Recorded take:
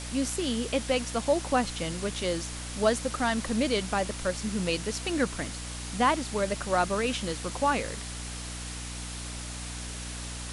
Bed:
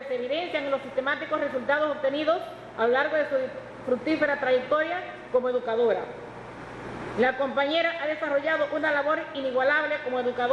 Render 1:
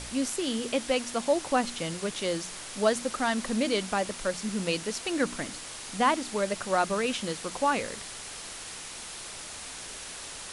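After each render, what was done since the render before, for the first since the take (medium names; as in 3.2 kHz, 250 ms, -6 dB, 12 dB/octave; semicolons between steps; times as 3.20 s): de-hum 60 Hz, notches 5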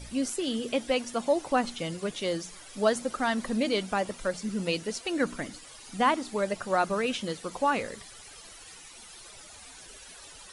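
noise reduction 13 dB, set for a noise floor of -41 dBFS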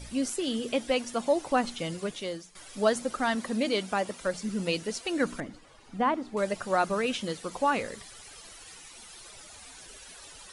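2.00–2.55 s: fade out, to -15 dB; 3.35–4.26 s: high-pass 130 Hz 6 dB/octave; 5.40–6.37 s: low-pass 1.1 kHz 6 dB/octave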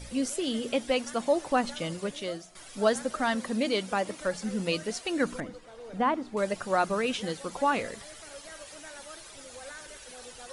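add bed -22.5 dB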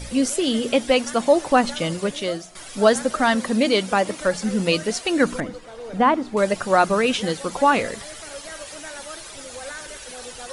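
trim +9 dB; peak limiter -3 dBFS, peak gain reduction 1 dB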